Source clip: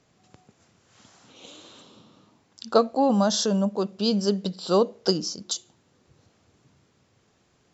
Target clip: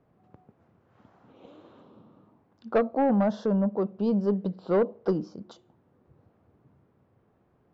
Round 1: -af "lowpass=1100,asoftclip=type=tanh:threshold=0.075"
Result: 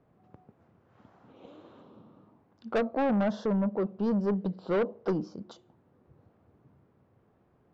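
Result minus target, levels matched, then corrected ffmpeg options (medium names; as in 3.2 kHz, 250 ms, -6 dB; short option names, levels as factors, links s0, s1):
saturation: distortion +6 dB
-af "lowpass=1100,asoftclip=type=tanh:threshold=0.168"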